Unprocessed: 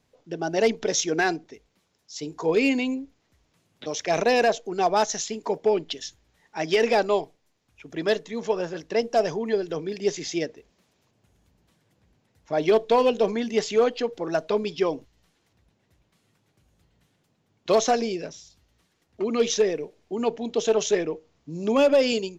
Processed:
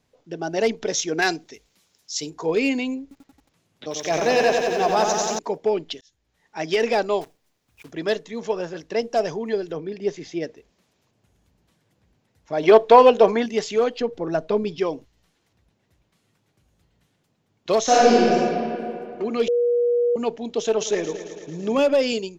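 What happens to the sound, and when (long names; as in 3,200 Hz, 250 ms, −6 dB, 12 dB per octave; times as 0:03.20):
0:01.22–0:02.30: high-shelf EQ 2,600 Hz +12 dB
0:03.02–0:05.39: feedback echo at a low word length 90 ms, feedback 80%, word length 9 bits, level −4.5 dB
0:06.01–0:06.59: fade in
0:07.21–0:07.92: one scale factor per block 3 bits
0:09.71–0:10.42: low-pass filter 2,200 Hz → 1,400 Hz 6 dB per octave
0:12.63–0:13.46: parametric band 970 Hz +11 dB 2.8 octaves
0:14.01–0:14.79: spectral tilt −2 dB per octave
0:17.83–0:18.32: thrown reverb, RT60 2.7 s, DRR −10 dB
0:19.48–0:20.16: beep over 480 Hz −16.5 dBFS
0:20.70–0:21.80: echo machine with several playback heads 111 ms, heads first and second, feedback 63%, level −15 dB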